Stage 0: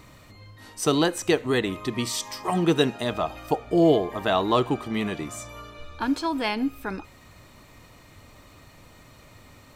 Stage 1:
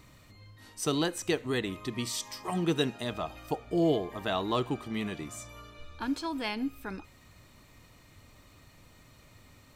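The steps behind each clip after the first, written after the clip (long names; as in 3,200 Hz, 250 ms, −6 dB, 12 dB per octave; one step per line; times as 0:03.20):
parametric band 730 Hz −4 dB 2.6 octaves
level −5 dB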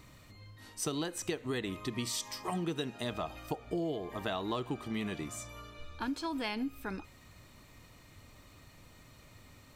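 downward compressor 12 to 1, threshold −31 dBFS, peak gain reduction 10.5 dB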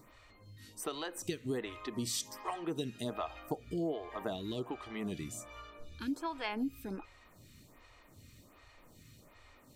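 phaser with staggered stages 1.3 Hz
level +1 dB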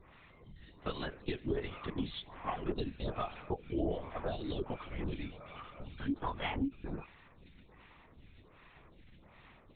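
linear-prediction vocoder at 8 kHz whisper
level +1 dB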